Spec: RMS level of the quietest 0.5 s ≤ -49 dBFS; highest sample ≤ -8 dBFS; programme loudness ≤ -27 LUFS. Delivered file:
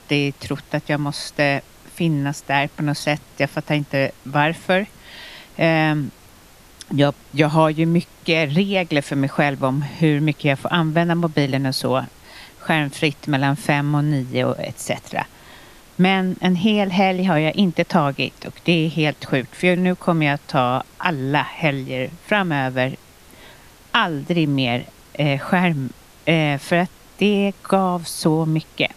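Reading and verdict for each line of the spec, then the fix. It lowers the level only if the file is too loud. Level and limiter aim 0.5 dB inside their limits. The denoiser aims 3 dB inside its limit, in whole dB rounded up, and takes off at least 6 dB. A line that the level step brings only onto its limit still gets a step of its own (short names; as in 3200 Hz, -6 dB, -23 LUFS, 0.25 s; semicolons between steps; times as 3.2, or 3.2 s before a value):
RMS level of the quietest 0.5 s -47 dBFS: fail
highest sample -2.5 dBFS: fail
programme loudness -20.0 LUFS: fail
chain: gain -7.5 dB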